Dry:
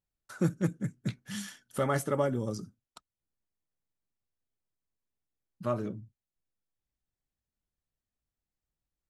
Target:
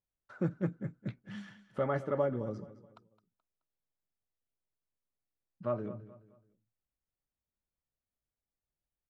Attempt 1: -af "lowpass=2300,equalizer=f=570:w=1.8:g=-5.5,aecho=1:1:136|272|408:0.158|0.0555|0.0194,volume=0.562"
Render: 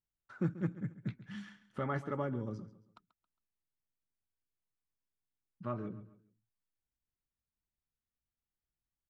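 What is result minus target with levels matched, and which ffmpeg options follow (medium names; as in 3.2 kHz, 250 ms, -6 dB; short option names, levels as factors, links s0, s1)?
echo 78 ms early; 500 Hz band -4.5 dB
-af "lowpass=2300,equalizer=f=570:w=1.8:g=4,aecho=1:1:214|428|642:0.158|0.0555|0.0194,volume=0.562"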